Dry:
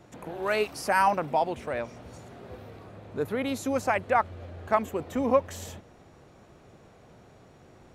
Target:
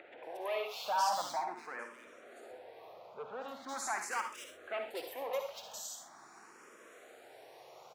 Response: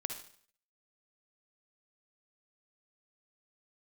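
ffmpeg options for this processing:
-filter_complex "[0:a]asoftclip=type=hard:threshold=-26dB,asettb=1/sr,asplit=3[link_01][link_02][link_03];[link_01]atrim=end=1.104[link_04];[link_02]atrim=start=1.1:end=3.46,asetpts=PTS-STARTPTS,afade=type=in:duration=0.004:curve=qsin,afade=type=out:start_time=2.356:duration=0.004:curve=qsin,highshelf=frequency=3800:gain=-11[link_05];[link_03]atrim=start=3.456[link_06];[link_04][link_05]acrossfade=duration=0.004:curve1=hsin:curve2=qsin[link_07];[link_07][link_06]acrossfade=duration=0.004:curve1=qsin:curve2=hsin,acrossover=split=3000[link_08][link_09];[link_09]adelay=230[link_10];[link_08][link_10]amix=inputs=2:normalize=0,acompressor=mode=upward:threshold=-37dB:ratio=2.5,highpass=650,highshelf=frequency=10000:gain=5[link_11];[1:a]atrim=start_sample=2205,afade=type=out:start_time=0.19:duration=0.01,atrim=end_sample=8820[link_12];[link_11][link_12]afir=irnorm=-1:irlink=0,asplit=2[link_13][link_14];[link_14]afreqshift=0.42[link_15];[link_13][link_15]amix=inputs=2:normalize=1"

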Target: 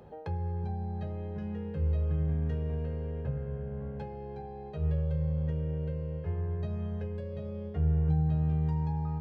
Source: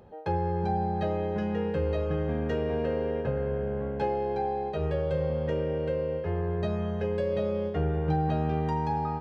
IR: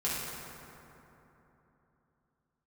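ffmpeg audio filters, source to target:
-filter_complex "[0:a]acrossover=split=140[link_01][link_02];[link_02]acompressor=threshold=-42dB:ratio=10[link_03];[link_01][link_03]amix=inputs=2:normalize=0,asplit=2[link_04][link_05];[1:a]atrim=start_sample=2205,atrim=end_sample=6174,lowshelf=frequency=430:gain=9[link_06];[link_05][link_06]afir=irnorm=-1:irlink=0,volume=-21.5dB[link_07];[link_04][link_07]amix=inputs=2:normalize=0"

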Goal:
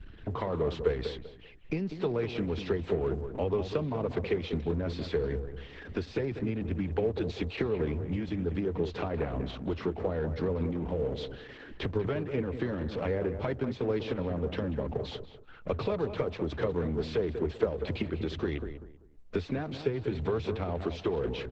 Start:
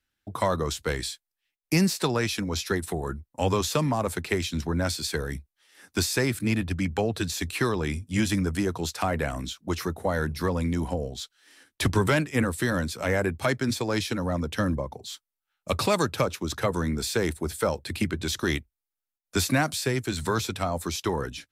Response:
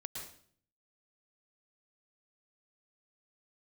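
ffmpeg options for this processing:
-filter_complex "[0:a]aeval=exprs='val(0)+0.5*0.0282*sgn(val(0))':channel_layout=same,anlmdn=6.31,equalizer=frequency=1600:width_type=o:width=2.1:gain=-7.5,acompressor=threshold=-29dB:ratio=16,lowpass=frequency=3100:width=0.5412,lowpass=frequency=3100:width=1.3066,equalizer=frequency=440:width_type=o:width=0.33:gain=10,asplit=2[link_01][link_02];[link_02]adelay=194,lowpass=frequency=1800:poles=1,volume=-8.5dB,asplit=2[link_03][link_04];[link_04]adelay=194,lowpass=frequency=1800:poles=1,volume=0.28,asplit=2[link_05][link_06];[link_06]adelay=194,lowpass=frequency=1800:poles=1,volume=0.28[link_07];[link_03][link_05][link_07]amix=inputs=3:normalize=0[link_08];[link_01][link_08]amix=inputs=2:normalize=0" -ar 48000 -c:a libopus -b:a 10k

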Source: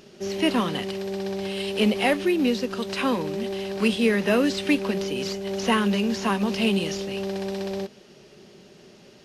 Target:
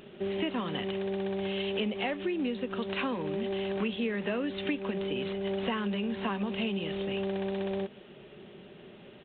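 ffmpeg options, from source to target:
ffmpeg -i in.wav -af "acompressor=threshold=-29dB:ratio=6,aresample=8000,aresample=44100" out.wav

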